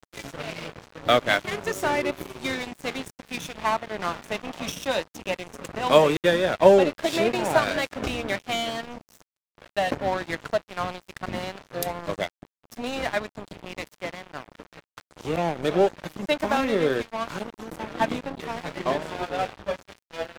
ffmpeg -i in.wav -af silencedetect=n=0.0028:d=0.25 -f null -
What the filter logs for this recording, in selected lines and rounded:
silence_start: 9.22
silence_end: 9.58 | silence_duration: 0.36